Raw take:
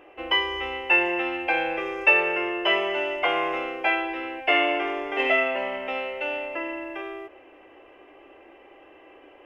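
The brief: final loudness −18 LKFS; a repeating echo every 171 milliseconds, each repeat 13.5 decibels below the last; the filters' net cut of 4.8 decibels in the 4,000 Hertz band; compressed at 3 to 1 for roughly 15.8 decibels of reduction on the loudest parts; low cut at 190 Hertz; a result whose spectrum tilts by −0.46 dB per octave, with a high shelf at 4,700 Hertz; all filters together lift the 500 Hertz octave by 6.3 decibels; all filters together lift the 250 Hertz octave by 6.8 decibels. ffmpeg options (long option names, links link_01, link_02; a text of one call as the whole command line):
ffmpeg -i in.wav -af "highpass=190,equalizer=frequency=250:width_type=o:gain=7.5,equalizer=frequency=500:width_type=o:gain=6.5,equalizer=frequency=4000:width_type=o:gain=-5.5,highshelf=frequency=4700:gain=-6,acompressor=threshold=-37dB:ratio=3,aecho=1:1:171|342:0.211|0.0444,volume=18.5dB" out.wav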